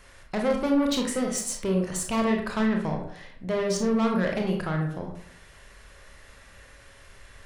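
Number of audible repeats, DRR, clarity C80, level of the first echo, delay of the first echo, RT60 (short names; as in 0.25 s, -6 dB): none, 1.0 dB, 8.5 dB, none, none, 0.65 s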